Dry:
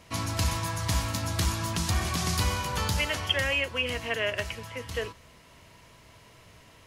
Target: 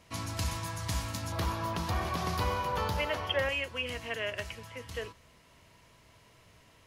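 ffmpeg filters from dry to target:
ffmpeg -i in.wav -filter_complex "[0:a]asettb=1/sr,asplit=3[link_01][link_02][link_03];[link_01]atrim=end=1.324[link_04];[link_02]atrim=start=1.32:end=3.49,asetpts=PTS-STARTPTS,afade=type=in:duration=0.004:curve=qsin,afade=type=out:start_time=2.166:duration=0.004:curve=qsin,equalizer=frequency=500:width_type=o:width=1:gain=8,equalizer=frequency=1000:width_type=o:width=1:gain=6,equalizer=frequency=8000:width_type=o:width=1:gain=-11[link_05];[link_03]atrim=start=3.486[link_06];[link_04][link_05]acrossfade=duration=0.004:curve1=hsin:curve2=qsin[link_07];[link_07][link_06]acrossfade=duration=0.004:curve1=qsin:curve2=hsin,volume=-6dB" out.wav

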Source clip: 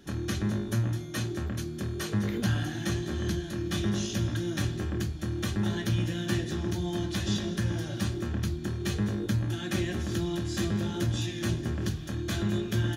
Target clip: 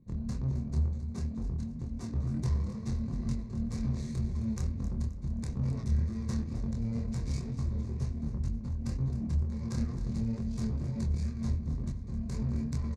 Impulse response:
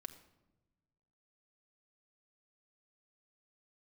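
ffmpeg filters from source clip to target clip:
-filter_complex "[0:a]equalizer=frequency=1250:width_type=o:width=0.33:gain=-12,equalizer=frequency=2000:width_type=o:width=0.33:gain=-11,equalizer=frequency=8000:width_type=o:width=0.33:gain=-6,adynamicsmooth=sensitivity=2.5:basefreq=710,aexciter=amount=11.4:drive=9.4:freq=7200,asplit=2[link_01][link_02];[link_02]asoftclip=type=hard:threshold=-30.5dB,volume=-8.5dB[link_03];[link_01][link_03]amix=inputs=2:normalize=0,asetrate=28595,aresample=44100,atempo=1.54221,flanger=delay=22.5:depth=4.9:speed=2.1,asplit=2[link_04][link_05];[link_05]aecho=0:1:264|528|792|1056:0.224|0.0851|0.0323|0.0123[link_06];[link_04][link_06]amix=inputs=2:normalize=0,volume=-1.5dB"

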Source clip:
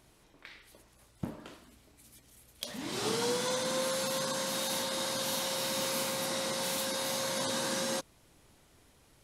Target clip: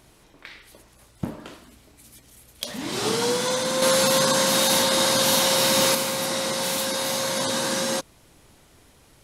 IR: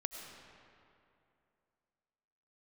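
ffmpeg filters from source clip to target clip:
-filter_complex "[0:a]asettb=1/sr,asplit=3[link_01][link_02][link_03];[link_01]atrim=end=3.824[link_04];[link_02]atrim=start=3.82:end=5.95,asetpts=PTS-STARTPTS,afade=type=in:duration=0.004:curve=qsin,afade=type=out:start_time=2.126:duration=0.004:curve=qsin,acontrast=42[link_05];[link_03]atrim=start=5.946[link_06];[link_04][link_05]acrossfade=duration=0.004:curve1=hsin:curve2=qsin[link_07];[link_07][link_06]acrossfade=duration=0.004:curve1=qsin:curve2=hsin,volume=8dB"

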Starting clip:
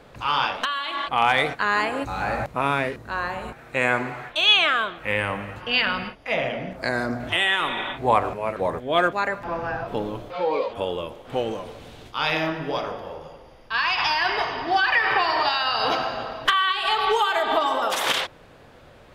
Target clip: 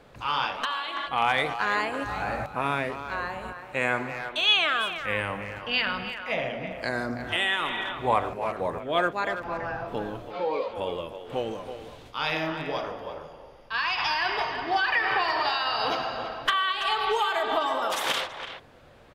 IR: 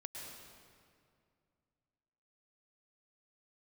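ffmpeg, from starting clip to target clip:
-filter_complex "[0:a]asplit=2[link_01][link_02];[link_02]adelay=330,highpass=300,lowpass=3400,asoftclip=type=hard:threshold=-13dB,volume=-9dB[link_03];[link_01][link_03]amix=inputs=2:normalize=0,volume=-4.5dB"

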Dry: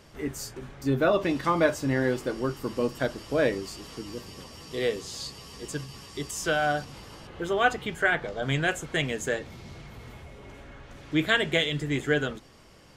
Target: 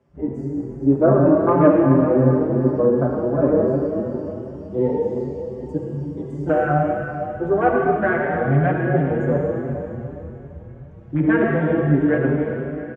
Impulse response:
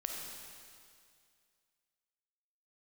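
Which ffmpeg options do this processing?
-filter_complex "[0:a]lowpass=8100,tiltshelf=frequency=1500:gain=9,bandreject=frequency=440:width=12,asplit=2[link_01][link_02];[link_02]acontrast=79,volume=2.5dB[link_03];[link_01][link_03]amix=inputs=2:normalize=0,afwtdn=0.178,acrossover=split=170|2500[link_04][link_05][link_06];[link_04]highpass=72[link_07];[link_06]acompressor=threshold=-52dB:ratio=6[link_08];[link_07][link_05][link_08]amix=inputs=3:normalize=0,equalizer=frequency=4200:width=1.7:gain=-7.5[link_09];[1:a]atrim=start_sample=2205,asetrate=30870,aresample=44100[link_10];[link_09][link_10]afir=irnorm=-1:irlink=0,asplit=2[link_11][link_12];[link_12]adelay=5.6,afreqshift=2.7[link_13];[link_11][link_13]amix=inputs=2:normalize=1,volume=-7.5dB"

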